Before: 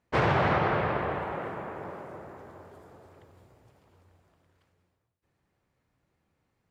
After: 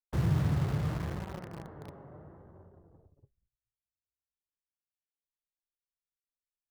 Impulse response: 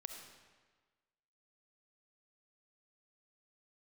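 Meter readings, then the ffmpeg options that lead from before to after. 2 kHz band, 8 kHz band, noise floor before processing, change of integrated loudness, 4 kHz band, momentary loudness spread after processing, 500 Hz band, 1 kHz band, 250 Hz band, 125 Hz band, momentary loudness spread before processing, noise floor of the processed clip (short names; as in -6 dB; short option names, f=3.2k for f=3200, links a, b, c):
-16.0 dB, n/a, -78 dBFS, -3.5 dB, -9.0 dB, 20 LU, -14.0 dB, -16.5 dB, -1.5 dB, +3.0 dB, 20 LU, under -85 dBFS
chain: -filter_complex "[0:a]bandreject=f=2.4k:w=5.5,agate=range=-27dB:threshold=-54dB:ratio=16:detection=peak,anlmdn=0.00631,aemphasis=mode=reproduction:type=riaa,acrossover=split=300|1100[a][b][c];[b]acompressor=threshold=-38dB:ratio=12[d];[c]asoftclip=type=tanh:threshold=-40dB[e];[a][d][e]amix=inputs=3:normalize=0,flanger=delay=5.1:depth=2.3:regen=62:speed=0.76:shape=triangular,aeval=exprs='0.211*(cos(1*acos(clip(val(0)/0.211,-1,1)))-cos(1*PI/2))+0.00422*(cos(5*acos(clip(val(0)/0.211,-1,1)))-cos(5*PI/2))':c=same,asplit=2[f][g];[g]acrusher=bits=4:mix=0:aa=0.000001,volume=-5dB[h];[f][h]amix=inputs=2:normalize=0,adynamicequalizer=threshold=0.00282:dfrequency=5700:dqfactor=0.7:tfrequency=5700:tqfactor=0.7:attack=5:release=100:ratio=0.375:range=2:mode=cutabove:tftype=highshelf,volume=-8.5dB"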